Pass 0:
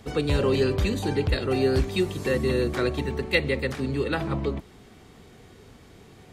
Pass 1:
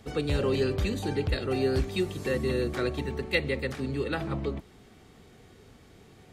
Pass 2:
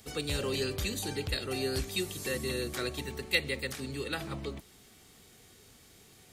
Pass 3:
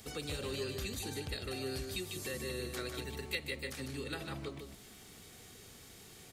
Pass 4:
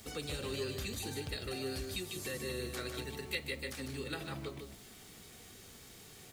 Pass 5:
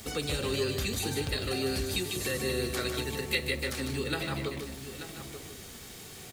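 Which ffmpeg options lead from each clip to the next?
ffmpeg -i in.wav -af "bandreject=frequency=1000:width=19,volume=-4dB" out.wav
ffmpeg -i in.wav -af "crystalizer=i=5.5:c=0,volume=-7.5dB" out.wav
ffmpeg -i in.wav -filter_complex "[0:a]acompressor=threshold=-47dB:ratio=2,asplit=2[link_01][link_02];[link_02]aecho=0:1:151:0.501[link_03];[link_01][link_03]amix=inputs=2:normalize=0,volume=2dB" out.wav
ffmpeg -i in.wav -af "flanger=delay=3.1:depth=6.6:regen=-73:speed=0.54:shape=triangular,acrusher=bits=10:mix=0:aa=0.000001,volume=4.5dB" out.wav
ffmpeg -i in.wav -af "aecho=1:1:884:0.282,volume=8dB" out.wav

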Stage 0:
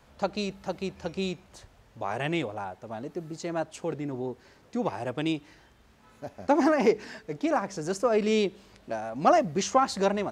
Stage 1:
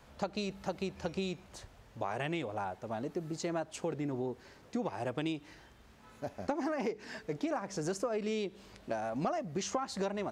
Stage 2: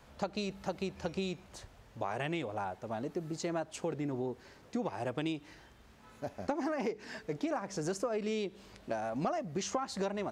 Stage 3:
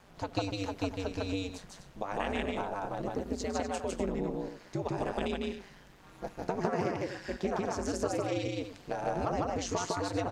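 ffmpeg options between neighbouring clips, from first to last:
ffmpeg -i in.wav -af "acompressor=threshold=-31dB:ratio=12" out.wav
ffmpeg -i in.wav -af anull out.wav
ffmpeg -i in.wav -af "aecho=1:1:154.5|247.8:0.891|0.316,aeval=exprs='val(0)*sin(2*PI*95*n/s)':channel_layout=same,volume=3dB" out.wav

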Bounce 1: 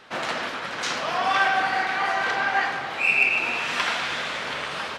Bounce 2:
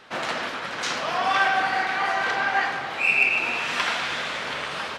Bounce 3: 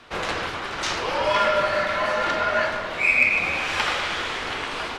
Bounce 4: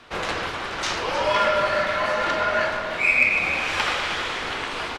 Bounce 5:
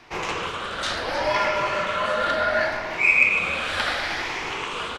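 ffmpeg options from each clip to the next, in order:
ffmpeg -i in.wav -af anull out.wav
ffmpeg -i in.wav -af "afreqshift=-160,bandreject=frequency=52.1:width_type=h:width=4,bandreject=frequency=104.2:width_type=h:width=4,bandreject=frequency=156.3:width_type=h:width=4,bandreject=frequency=208.4:width_type=h:width=4,bandreject=frequency=260.5:width_type=h:width=4,bandreject=frequency=312.6:width_type=h:width=4,bandreject=frequency=364.7:width_type=h:width=4,bandreject=frequency=416.8:width_type=h:width=4,bandreject=frequency=468.9:width_type=h:width=4,bandreject=frequency=521:width_type=h:width=4,bandreject=frequency=573.1:width_type=h:width=4,bandreject=frequency=625.2:width_type=h:width=4,bandreject=frequency=677.3:width_type=h:width=4,bandreject=frequency=729.4:width_type=h:width=4,bandreject=frequency=781.5:width_type=h:width=4,bandreject=frequency=833.6:width_type=h:width=4,bandreject=frequency=885.7:width_type=h:width=4,bandreject=frequency=937.8:width_type=h:width=4,bandreject=frequency=989.9:width_type=h:width=4,bandreject=frequency=1042:width_type=h:width=4,bandreject=frequency=1094.1:width_type=h:width=4,bandreject=frequency=1146.2:width_type=h:width=4,bandreject=frequency=1198.3:width_type=h:width=4,bandreject=frequency=1250.4:width_type=h:width=4,bandreject=frequency=1302.5:width_type=h:width=4,bandreject=frequency=1354.6:width_type=h:width=4,bandreject=frequency=1406.7:width_type=h:width=4,bandreject=frequency=1458.8:width_type=h:width=4,bandreject=frequency=1510.9:width_type=h:width=4,bandreject=frequency=1563:width_type=h:width=4,bandreject=frequency=1615.1:width_type=h:width=4,bandreject=frequency=1667.2:width_type=h:width=4,bandreject=frequency=1719.3:width_type=h:width=4,bandreject=frequency=1771.4:width_type=h:width=4,bandreject=frequency=1823.5:width_type=h:width=4,bandreject=frequency=1875.6:width_type=h:width=4,bandreject=frequency=1927.7:width_type=h:width=4,bandreject=frequency=1979.8:width_type=h:width=4,volume=1.5dB" out.wav
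ffmpeg -i in.wav -af "aecho=1:1:311:0.237" out.wav
ffmpeg -i in.wav -af "afftfilt=real='re*pow(10,7/40*sin(2*PI*(0.74*log(max(b,1)*sr/1024/100)/log(2)-(0.7)*(pts-256)/sr)))':imag='im*pow(10,7/40*sin(2*PI*(0.74*log(max(b,1)*sr/1024/100)/log(2)-(0.7)*(pts-256)/sr)))':win_size=1024:overlap=0.75,volume=-1.5dB" out.wav

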